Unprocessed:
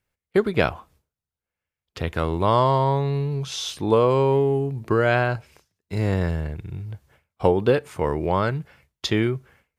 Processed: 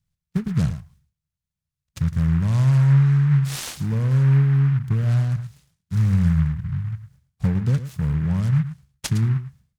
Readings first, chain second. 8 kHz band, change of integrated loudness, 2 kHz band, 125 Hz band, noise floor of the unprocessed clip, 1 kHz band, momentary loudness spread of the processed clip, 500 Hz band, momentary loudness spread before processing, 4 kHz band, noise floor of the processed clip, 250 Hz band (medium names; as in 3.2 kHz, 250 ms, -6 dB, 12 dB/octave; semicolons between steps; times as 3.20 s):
+2.5 dB, +2.0 dB, -8.5 dB, +8.5 dB, under -85 dBFS, -16.0 dB, 12 LU, -19.5 dB, 14 LU, -6.5 dB, under -85 dBFS, +2.5 dB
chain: FFT filter 100 Hz 0 dB, 160 Hz +6 dB, 350 Hz -25 dB, 2.9 kHz -27 dB, 4.9 kHz 0 dB, 7.3 kHz -6 dB; on a send: delay 110 ms -12.5 dB; on the sum: delay time shaken by noise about 1.4 kHz, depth 0.059 ms; trim +5.5 dB